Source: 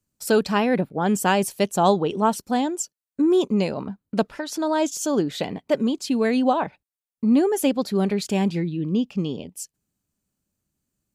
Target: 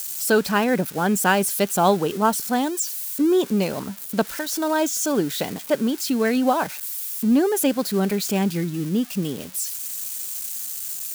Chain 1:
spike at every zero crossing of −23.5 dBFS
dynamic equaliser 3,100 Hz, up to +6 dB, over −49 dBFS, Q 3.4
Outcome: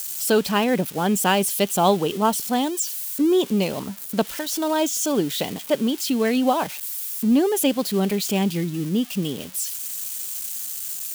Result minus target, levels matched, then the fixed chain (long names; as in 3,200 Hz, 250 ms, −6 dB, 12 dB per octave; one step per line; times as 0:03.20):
2,000 Hz band −3.0 dB
spike at every zero crossing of −23.5 dBFS
dynamic equaliser 1,500 Hz, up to +6 dB, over −49 dBFS, Q 3.4